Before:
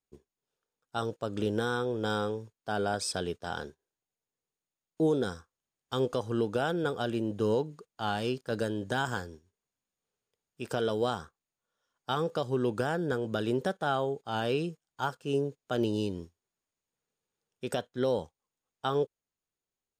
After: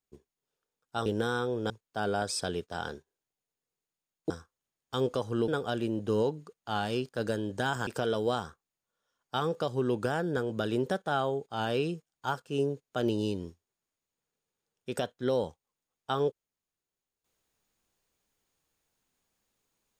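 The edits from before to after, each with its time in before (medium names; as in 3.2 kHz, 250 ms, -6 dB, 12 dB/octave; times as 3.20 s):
1.06–1.44 s: delete
2.08–2.42 s: delete
5.02–5.29 s: delete
6.47–6.80 s: delete
9.19–10.62 s: delete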